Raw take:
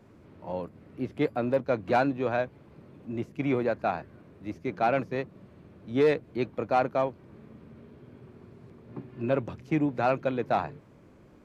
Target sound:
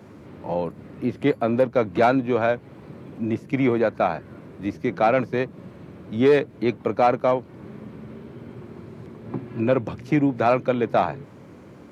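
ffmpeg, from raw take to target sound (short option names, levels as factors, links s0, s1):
-filter_complex "[0:a]highpass=100,asplit=2[s0][s1];[s1]acompressor=threshold=0.0178:ratio=6,volume=1.26[s2];[s0][s2]amix=inputs=2:normalize=0,asetrate=42336,aresample=44100,volume=1.58"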